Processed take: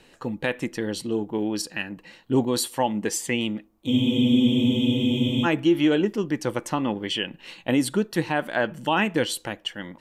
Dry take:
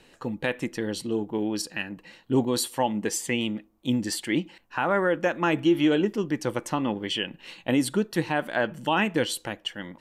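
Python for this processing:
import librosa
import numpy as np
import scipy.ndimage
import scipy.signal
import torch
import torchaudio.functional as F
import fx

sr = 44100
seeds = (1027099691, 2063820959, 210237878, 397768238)

y = fx.spec_freeze(x, sr, seeds[0], at_s=3.9, hold_s=1.54)
y = y * librosa.db_to_amplitude(1.5)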